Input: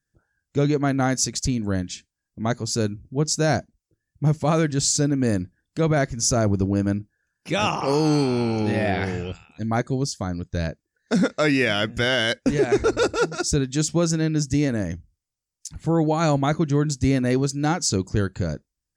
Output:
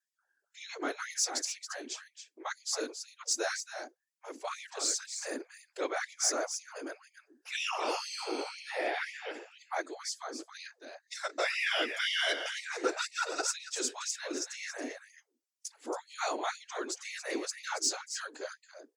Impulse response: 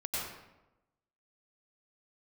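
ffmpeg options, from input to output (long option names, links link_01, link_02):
-filter_complex "[0:a]asettb=1/sr,asplit=3[link_01][link_02][link_03];[link_01]atrim=end=4.254[link_04];[link_02]atrim=start=4.25:end=5.18,asetpts=PTS-STARTPTS,afade=type=in:duration=0.004:curve=qsin,afade=type=out:start_time=0.926:duration=0.004:curve=qsin,aeval=exprs='val(0)*sin(2*PI*53*n/s)':channel_layout=same[link_05];[link_03]atrim=start=5.176[link_06];[link_04][link_05]acrossfade=duration=0.004:curve1=hsin:curve2=qsin[link_07];[link_07][link_06]acrossfade=duration=0.004:curve1=qsin:curve2=hsin,acrossover=split=100|810[link_08][link_09][link_10];[link_09]alimiter=limit=-19.5dB:level=0:latency=1[link_11];[link_08][link_11][link_10]amix=inputs=3:normalize=0,bandreject=frequency=50:width_type=h:width=6,bandreject=frequency=100:width_type=h:width=6,bandreject=frequency=150:width_type=h:width=6,bandreject=frequency=200:width_type=h:width=6,bandreject=frequency=250:width_type=h:width=6,bandreject=frequency=300:width_type=h:width=6,bandreject=frequency=350:width_type=h:width=6,bandreject=frequency=400:width_type=h:width=6,afftfilt=real='hypot(re,im)*cos(2*PI*random(0))':imag='hypot(re,im)*sin(2*PI*random(1))':win_size=512:overlap=0.75,asoftclip=type=tanh:threshold=-16.5dB,aecho=1:1:276:0.355,afftfilt=real='re*gte(b*sr/1024,250*pow(1900/250,0.5+0.5*sin(2*PI*2*pts/sr)))':imag='im*gte(b*sr/1024,250*pow(1900/250,0.5+0.5*sin(2*PI*2*pts/sr)))':win_size=1024:overlap=0.75"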